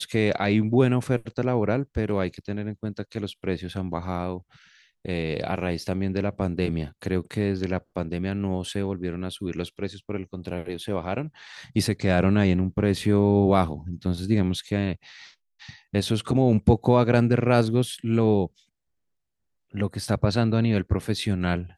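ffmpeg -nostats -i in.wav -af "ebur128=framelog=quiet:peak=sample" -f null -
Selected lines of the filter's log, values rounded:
Integrated loudness:
  I:         -25.1 LUFS
  Threshold: -35.5 LUFS
Loudness range:
  LRA:         8.4 LU
  Threshold: -45.8 LUFS
  LRA low:   -30.8 LUFS
  LRA high:  -22.4 LUFS
Sample peak:
  Peak:       -4.8 dBFS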